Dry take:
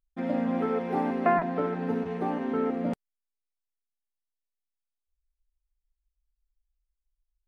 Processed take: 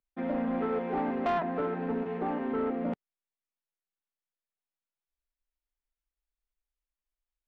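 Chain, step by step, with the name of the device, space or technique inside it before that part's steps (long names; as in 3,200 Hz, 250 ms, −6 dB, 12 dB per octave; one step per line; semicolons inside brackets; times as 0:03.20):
three-way crossover with the lows and the highs turned down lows −13 dB, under 160 Hz, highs −21 dB, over 3,600 Hz
saturation between pre-emphasis and de-emphasis (high-shelf EQ 3,400 Hz +8 dB; soft clipping −23.5 dBFS, distortion −12 dB; high-shelf EQ 3,400 Hz −8 dB)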